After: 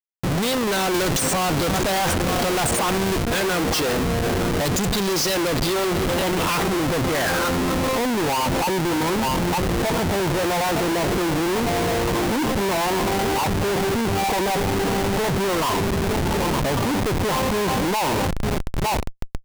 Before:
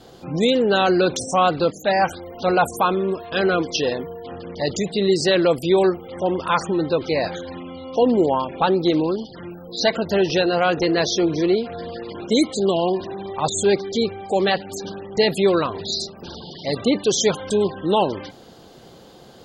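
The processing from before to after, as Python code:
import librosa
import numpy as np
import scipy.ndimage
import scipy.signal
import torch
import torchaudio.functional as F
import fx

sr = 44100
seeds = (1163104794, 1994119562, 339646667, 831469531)

y = fx.dynamic_eq(x, sr, hz=440.0, q=1.2, threshold_db=-30.0, ratio=4.0, max_db=-4)
y = y + 10.0 ** (-17.5 / 20.0) * np.pad(y, (int(909 * sr / 1000.0), 0))[:len(y)]
y = np.clip(10.0 ** (21.0 / 20.0) * y, -1.0, 1.0) / 10.0 ** (21.0 / 20.0)
y = fx.filter_sweep_lowpass(y, sr, from_hz=9000.0, to_hz=950.0, start_s=4.6, end_s=8.13, q=4.9)
y = fx.schmitt(y, sr, flips_db=-32.5)
y = fx.band_squash(y, sr, depth_pct=70, at=(0.94, 3.23))
y = y * 10.0 ** (2.5 / 20.0)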